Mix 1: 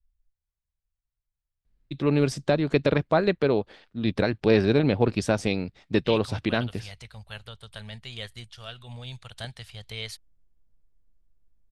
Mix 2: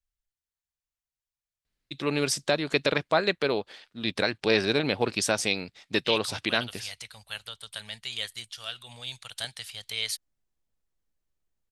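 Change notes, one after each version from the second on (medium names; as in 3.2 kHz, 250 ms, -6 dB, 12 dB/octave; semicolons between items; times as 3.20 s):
master: add tilt EQ +3.5 dB/octave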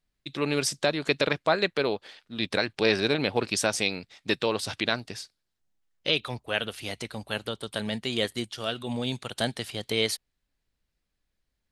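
first voice: entry -1.65 s; second voice: remove amplifier tone stack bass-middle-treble 10-0-10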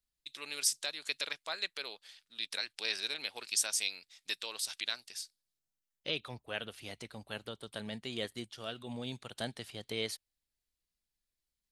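first voice: add differentiator; second voice -10.5 dB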